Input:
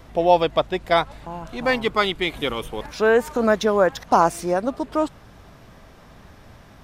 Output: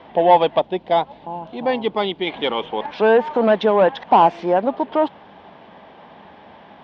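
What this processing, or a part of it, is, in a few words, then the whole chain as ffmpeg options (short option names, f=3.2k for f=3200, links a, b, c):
overdrive pedal into a guitar cabinet: -filter_complex "[0:a]asettb=1/sr,asplit=3[a][b][c];[a]atrim=end=0.594[d];[b]atrim=start=0.59:end=2.27,asetpts=PTS-STARTPTS,afade=t=in:d=0.004:c=qsin,afade=t=out:st=1.676:d=0.004:c=qsin,equalizer=f=1.6k:w=0.61:g=-10.5[e];[c]atrim=start=2.266[f];[d][e]acrossfade=d=0.004:c1=hsin:c2=qsin[g];[g][f]acrossfade=d=0.004:c1=qsin:c2=hsin,asplit=2[h][i];[i]highpass=f=720:p=1,volume=17dB,asoftclip=type=tanh:threshold=-2.5dB[j];[h][j]amix=inputs=2:normalize=0,lowpass=f=1k:p=1,volume=-6dB,highpass=110,equalizer=f=120:t=q:w=4:g=-9,equalizer=f=200:t=q:w=4:g=4,equalizer=f=860:t=q:w=4:g=7,equalizer=f=1.3k:t=q:w=4:g=-7,equalizer=f=3.2k:t=q:w=4:g=7,lowpass=f=4.1k:w=0.5412,lowpass=f=4.1k:w=1.3066,volume=-1dB"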